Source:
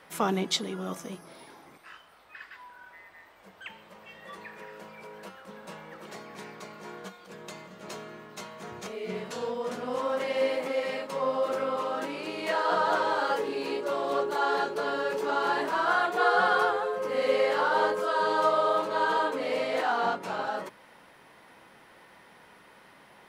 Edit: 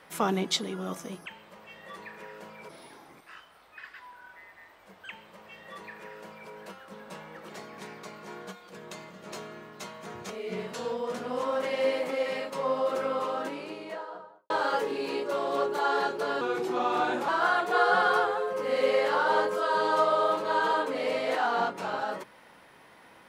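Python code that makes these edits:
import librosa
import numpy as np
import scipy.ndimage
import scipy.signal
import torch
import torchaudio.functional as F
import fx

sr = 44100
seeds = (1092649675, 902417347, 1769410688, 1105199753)

y = fx.studio_fade_out(x, sr, start_s=11.81, length_s=1.26)
y = fx.edit(y, sr, fx.duplicate(start_s=3.65, length_s=1.43, to_s=1.26),
    fx.speed_span(start_s=14.98, length_s=0.76, speed=0.87), tone=tone)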